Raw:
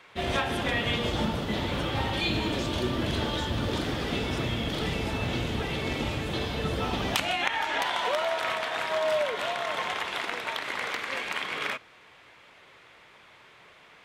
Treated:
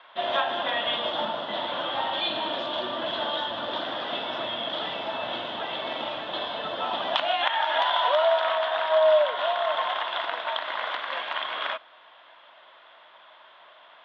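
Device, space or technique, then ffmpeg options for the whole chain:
phone earpiece: -filter_complex "[0:a]highpass=430,equalizer=frequency=430:width_type=q:width=4:gain=-9,equalizer=frequency=640:width_type=q:width=4:gain=10,equalizer=frequency=1000:width_type=q:width=4:gain=7,equalizer=frequency=1500:width_type=q:width=4:gain=3,equalizer=frequency=2300:width_type=q:width=4:gain=-8,equalizer=frequency=3400:width_type=q:width=4:gain=9,lowpass=frequency=3500:width=0.5412,lowpass=frequency=3500:width=1.3066,asettb=1/sr,asplit=3[link_01][link_02][link_03];[link_01]atrim=end=7.344[link_04];[link_02]atrim=start=7.34:end=8.4,asetpts=PTS-STARTPTS,afade=type=in:duration=0.004:curve=qsin,afade=type=out:start_time=1.056:duration=0.004:curve=qsin,highshelf=frequency=4700:gain=5[link_05];[link_03]atrim=start=8.396[link_06];[link_04][link_05]acrossfade=duration=0.004:curve1=hsin:curve2=qsin[link_07];[link_07][link_06]acrossfade=duration=0.004:curve1=qsin:curve2=hsin"

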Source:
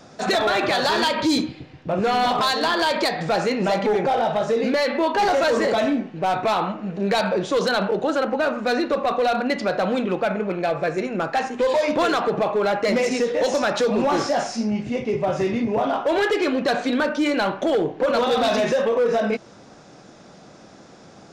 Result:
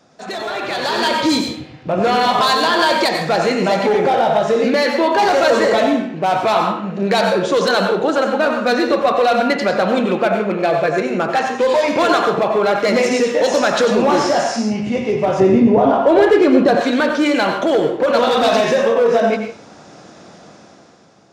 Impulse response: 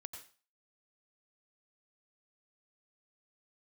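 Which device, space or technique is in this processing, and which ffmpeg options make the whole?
far laptop microphone: -filter_complex "[1:a]atrim=start_sample=2205[link_01];[0:a][link_01]afir=irnorm=-1:irlink=0,highpass=frequency=100:poles=1,dynaudnorm=framelen=210:gausssize=9:maxgain=13dB,asettb=1/sr,asplit=3[link_02][link_03][link_04];[link_02]atrim=end=15.404[link_05];[link_03]atrim=start=15.4:end=16.81,asetpts=PTS-STARTPTS,afade=type=in:duration=0.004:curve=qsin,afade=type=out:start_time=1.406:duration=0.004:curve=qsin,tiltshelf=frequency=970:gain=7[link_06];[link_04]atrim=start=16.806[link_07];[link_05][link_06]acrossfade=duration=0.004:curve1=hsin:curve2=qsin[link_08];[link_08][link_07]acrossfade=duration=0.004:curve1=qsin:curve2=hsin,volume=-1dB"

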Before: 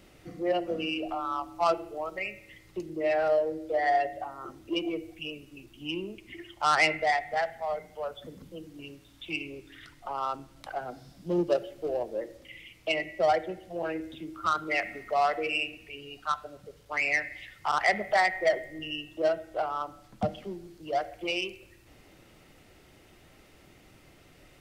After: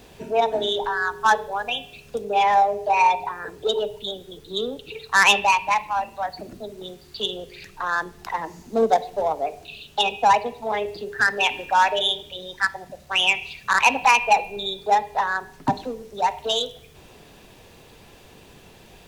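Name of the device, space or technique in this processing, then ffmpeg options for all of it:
nightcore: -af "asetrate=56889,aresample=44100,volume=8dB"

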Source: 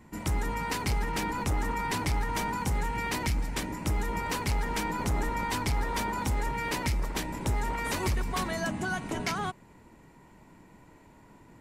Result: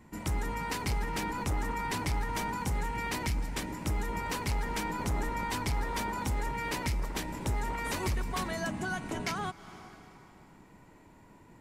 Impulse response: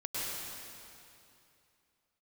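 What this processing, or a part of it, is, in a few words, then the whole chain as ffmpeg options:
ducked reverb: -filter_complex "[0:a]asplit=3[link_01][link_02][link_03];[1:a]atrim=start_sample=2205[link_04];[link_02][link_04]afir=irnorm=-1:irlink=0[link_05];[link_03]apad=whole_len=511867[link_06];[link_05][link_06]sidechaincompress=threshold=-41dB:ratio=8:attack=28:release=284,volume=-14dB[link_07];[link_01][link_07]amix=inputs=2:normalize=0,volume=-3dB"

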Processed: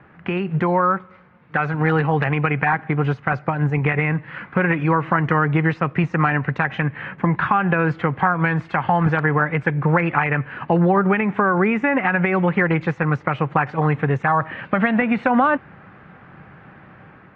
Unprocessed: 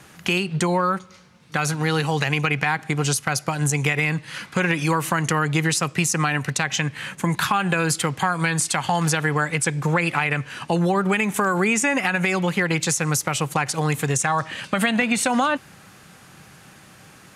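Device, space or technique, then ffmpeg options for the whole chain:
action camera in a waterproof case: -filter_complex "[0:a]asettb=1/sr,asplit=3[link_01][link_02][link_03];[link_01]atrim=end=0.624[link_04];[link_02]atrim=start=0.62:end=1.74,asetpts=PTS-STARTPTS,afade=type=in:duration=0.004:curve=qsin,afade=type=out:start_time=1.116:duration=0.004:curve=qsin,lowshelf=frequency=370:gain=-4.5[link_05];[link_03]atrim=start=1.736[link_06];[link_04][link_05]acrossfade=duration=0.004:curve1=hsin:curve2=qsin[link_07];[link_07][link_06]acrossfade=duration=0.004:curve1=qsin:curve2=hsin,lowpass=frequency=2000:width=0.5412,lowpass=frequency=2000:width=1.3066,dynaudnorm=framelen=170:gausssize=5:maxgain=4.5dB" -ar 48000 -c:a aac -b:a 48k

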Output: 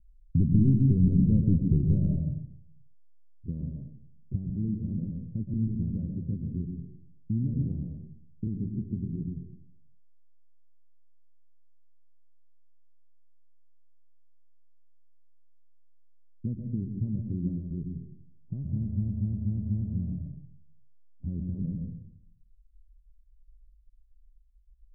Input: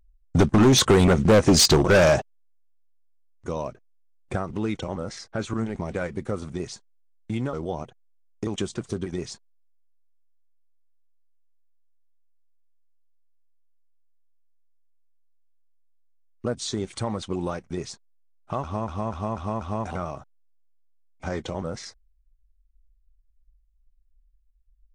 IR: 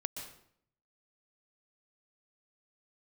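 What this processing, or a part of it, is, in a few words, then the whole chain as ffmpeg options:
club heard from the street: -filter_complex "[0:a]alimiter=limit=-17dB:level=0:latency=1:release=461,lowpass=frequency=220:width=0.5412,lowpass=frequency=220:width=1.3066[link_01];[1:a]atrim=start_sample=2205[link_02];[link_01][link_02]afir=irnorm=-1:irlink=0,volume=3.5dB"

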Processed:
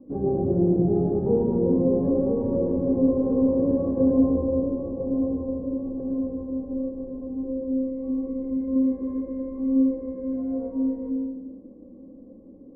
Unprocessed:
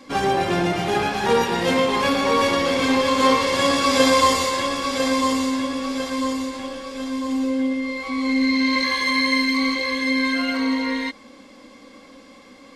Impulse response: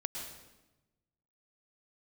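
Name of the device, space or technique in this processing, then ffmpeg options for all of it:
next room: -filter_complex "[0:a]asettb=1/sr,asplit=3[link_01][link_02][link_03];[link_01]atrim=end=4.204[link_04];[link_02]atrim=start=4.2:end=6,asetpts=PTS-STARTPTS,afade=type=in:duration=0.004:curve=qsin,afade=type=out:start_time=1.796:duration=0.004:curve=qsin,lowpass=frequency=1100:width=0.5412,lowpass=frequency=1100:width=1.3066[link_05];[link_03]atrim=start=5.996[link_06];[link_04][link_05]acrossfade=duration=0.004:curve1=hsin:curve2=qsin[link_07];[link_07][link_06]acrossfade=duration=0.004:curve1=qsin:curve2=hsin,lowpass=frequency=450:width=0.5412,lowpass=frequency=450:width=1.3066[link_08];[1:a]atrim=start_sample=2205[link_09];[link_08][link_09]afir=irnorm=-1:irlink=0,volume=1.5dB"

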